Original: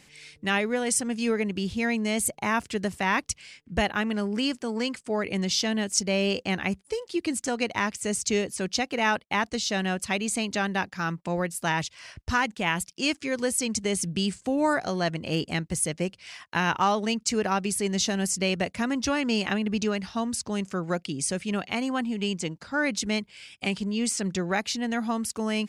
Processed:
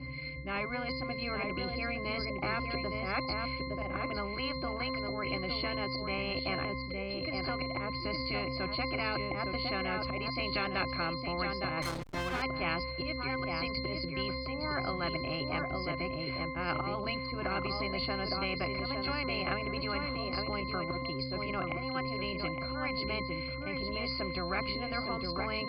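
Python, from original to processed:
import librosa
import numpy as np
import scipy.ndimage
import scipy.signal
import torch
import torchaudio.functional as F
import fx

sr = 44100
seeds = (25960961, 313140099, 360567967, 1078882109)

p1 = fx.freq_compress(x, sr, knee_hz=4000.0, ratio=4.0)
p2 = fx.over_compress(p1, sr, threshold_db=-29.0, ratio=-1.0, at=(3.27, 3.83))
p3 = fx.high_shelf(p2, sr, hz=2900.0, db=11.5, at=(10.16, 11.07))
p4 = fx.auto_swell(p3, sr, attack_ms=192.0)
p5 = fx.air_absorb(p4, sr, metres=250.0)
p6 = fx.octave_resonator(p5, sr, note='C', decay_s=0.54)
p7 = p6 + fx.echo_single(p6, sr, ms=862, db=-9.0, dry=0)
p8 = fx.backlash(p7, sr, play_db=-56.0, at=(11.82, 12.42))
p9 = fx.spectral_comp(p8, sr, ratio=10.0)
y = p9 * 10.0 ** (7.5 / 20.0)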